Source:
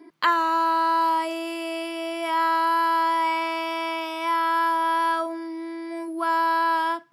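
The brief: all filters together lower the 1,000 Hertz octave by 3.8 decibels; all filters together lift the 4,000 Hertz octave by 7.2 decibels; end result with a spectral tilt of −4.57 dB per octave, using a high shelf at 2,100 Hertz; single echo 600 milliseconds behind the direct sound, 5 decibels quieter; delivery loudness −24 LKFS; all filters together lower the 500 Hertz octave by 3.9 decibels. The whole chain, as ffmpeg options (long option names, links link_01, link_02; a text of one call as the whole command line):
ffmpeg -i in.wav -af "equalizer=frequency=500:width_type=o:gain=-5,equalizer=frequency=1000:width_type=o:gain=-4,highshelf=frequency=2100:gain=3.5,equalizer=frequency=4000:width_type=o:gain=6.5,aecho=1:1:600:0.562,volume=0.5dB" out.wav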